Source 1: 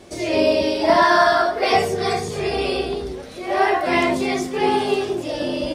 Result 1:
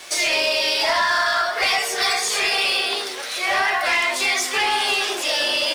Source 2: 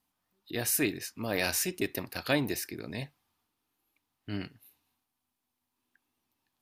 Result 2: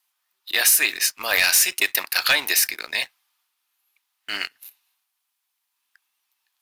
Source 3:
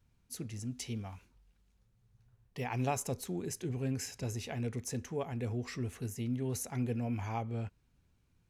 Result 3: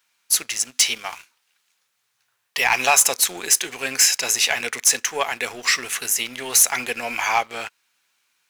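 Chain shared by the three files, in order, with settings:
high-pass filter 1,400 Hz 12 dB per octave
downward compressor 6 to 1, threshold −32 dBFS
leveller curve on the samples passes 2
loudness normalisation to −19 LKFS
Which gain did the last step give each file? +8.5, +12.5, +20.5 decibels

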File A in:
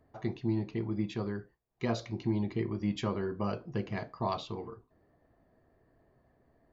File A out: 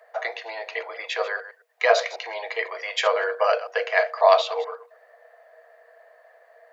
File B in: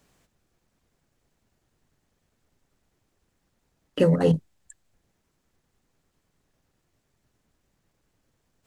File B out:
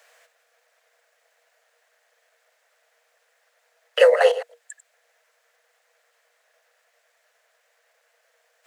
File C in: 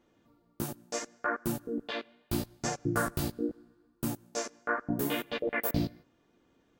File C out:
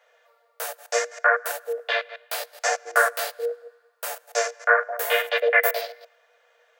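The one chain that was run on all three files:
delay that plays each chunk backwards 108 ms, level −14 dB
Chebyshev high-pass with heavy ripple 460 Hz, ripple 9 dB
normalise the peak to −3 dBFS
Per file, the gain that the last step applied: +22.5, +16.5, +16.5 decibels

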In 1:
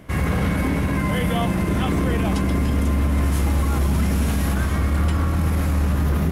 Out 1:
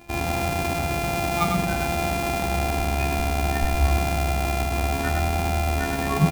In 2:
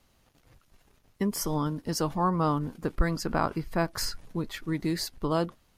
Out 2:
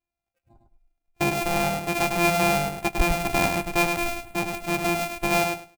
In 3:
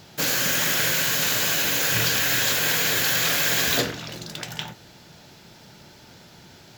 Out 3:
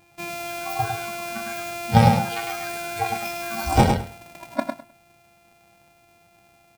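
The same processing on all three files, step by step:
samples sorted by size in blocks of 128 samples
high-shelf EQ 8,100 Hz +5 dB
hollow resonant body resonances 790/2,400 Hz, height 16 dB, ringing for 55 ms
in parallel at −8 dB: hard clipping −15.5 dBFS
on the sum: noise reduction from a noise print of the clip's start 29 dB
on a send: repeating echo 103 ms, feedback 17%, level −5 dB
on the sum: loudness normalisation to −24 LKFS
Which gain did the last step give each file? +20.0, −1.0, +14.0 decibels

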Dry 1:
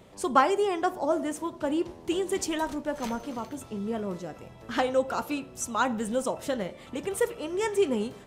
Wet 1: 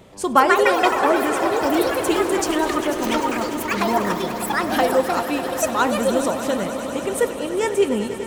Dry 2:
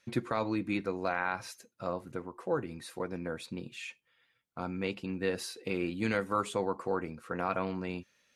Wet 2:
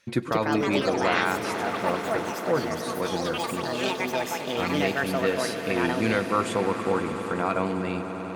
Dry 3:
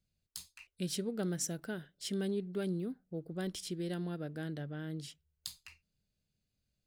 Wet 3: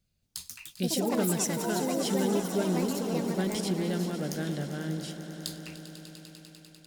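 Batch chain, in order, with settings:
delay with pitch and tempo change per echo 227 ms, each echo +5 semitones, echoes 3
echo that builds up and dies away 99 ms, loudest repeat 5, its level −15.5 dB
level +6 dB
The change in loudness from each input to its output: +9.0, +9.0, +9.0 LU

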